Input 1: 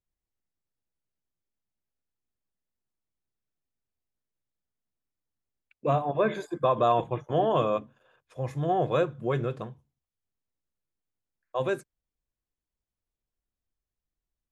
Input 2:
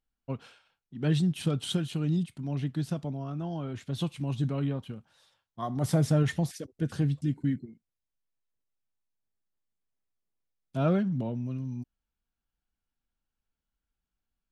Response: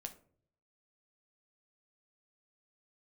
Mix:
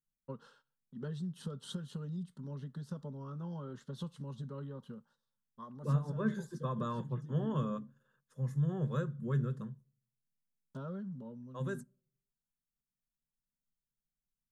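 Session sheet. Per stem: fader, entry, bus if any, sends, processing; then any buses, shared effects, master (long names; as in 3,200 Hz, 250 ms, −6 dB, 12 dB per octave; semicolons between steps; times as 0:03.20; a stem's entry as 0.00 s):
−4.5 dB, 0.00 s, send −15 dB, octave-band graphic EQ 125/250/500/1,000/2,000/4,000 Hz +9/+5/−11/−9/+3/−6 dB
−2.5 dB, 0.00 s, send −21 dB, noise gate −59 dBFS, range −16 dB; high-shelf EQ 7,200 Hz −12 dB; downward compressor 10 to 1, threshold −32 dBFS, peak gain reduction 12.5 dB; automatic ducking −7 dB, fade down 0.85 s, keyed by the first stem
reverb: on, RT60 0.55 s, pre-delay 8 ms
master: parametric band 63 Hz −10 dB 1 octave; phaser with its sweep stopped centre 470 Hz, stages 8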